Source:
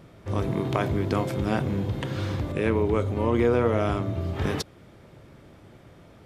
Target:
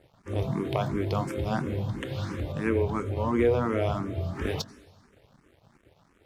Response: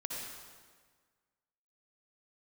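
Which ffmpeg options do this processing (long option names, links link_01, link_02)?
-filter_complex "[0:a]aeval=exprs='sgn(val(0))*max(abs(val(0))-0.00316,0)':channel_layout=same,asplit=2[link_01][link_02];[1:a]atrim=start_sample=2205,adelay=21[link_03];[link_02][link_03]afir=irnorm=-1:irlink=0,volume=-17.5dB[link_04];[link_01][link_04]amix=inputs=2:normalize=0,asplit=2[link_05][link_06];[link_06]afreqshift=2.9[link_07];[link_05][link_07]amix=inputs=2:normalize=1"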